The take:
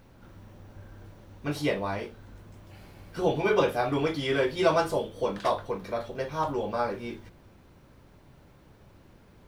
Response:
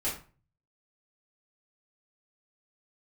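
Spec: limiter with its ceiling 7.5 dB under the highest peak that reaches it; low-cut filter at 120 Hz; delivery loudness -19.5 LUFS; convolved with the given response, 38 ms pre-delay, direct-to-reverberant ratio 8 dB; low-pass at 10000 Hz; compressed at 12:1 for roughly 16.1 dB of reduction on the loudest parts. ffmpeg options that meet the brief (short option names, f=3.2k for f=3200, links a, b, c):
-filter_complex "[0:a]highpass=120,lowpass=10k,acompressor=threshold=-34dB:ratio=12,alimiter=level_in=7.5dB:limit=-24dB:level=0:latency=1,volume=-7.5dB,asplit=2[a][b];[1:a]atrim=start_sample=2205,adelay=38[c];[b][c]afir=irnorm=-1:irlink=0,volume=-13.5dB[d];[a][d]amix=inputs=2:normalize=0,volume=22.5dB"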